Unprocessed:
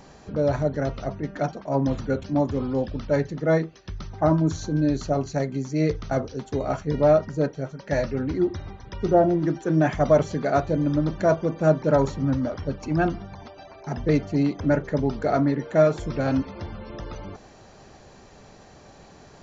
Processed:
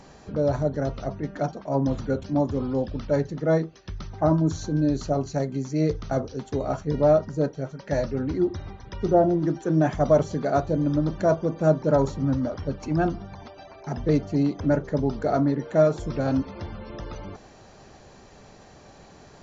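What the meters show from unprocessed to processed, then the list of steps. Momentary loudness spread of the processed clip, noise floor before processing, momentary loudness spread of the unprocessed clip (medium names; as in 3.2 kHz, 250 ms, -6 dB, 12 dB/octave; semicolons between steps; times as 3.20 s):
14 LU, -49 dBFS, 14 LU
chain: dynamic bell 2.2 kHz, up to -7 dB, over -44 dBFS, Q 1.2; MP3 56 kbps 24 kHz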